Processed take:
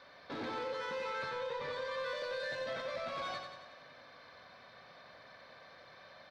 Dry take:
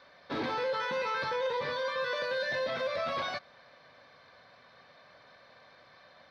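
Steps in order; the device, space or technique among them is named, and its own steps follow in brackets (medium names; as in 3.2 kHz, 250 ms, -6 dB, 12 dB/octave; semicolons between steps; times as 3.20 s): 1.13–1.91 s: low-pass 5.8 kHz; soft clipper into limiter (saturation -27.5 dBFS, distortion -19 dB; peak limiter -35.5 dBFS, peak gain reduction 7.5 dB); feedback delay 91 ms, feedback 57%, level -6 dB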